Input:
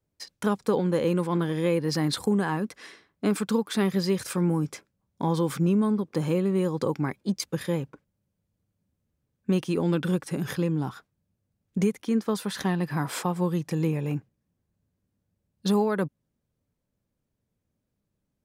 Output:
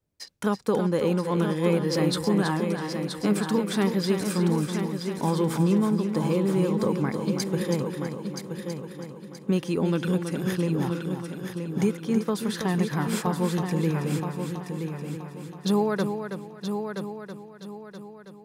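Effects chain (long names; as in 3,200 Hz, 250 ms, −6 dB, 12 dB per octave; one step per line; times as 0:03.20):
echo machine with several playback heads 325 ms, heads first and third, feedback 52%, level −7.5 dB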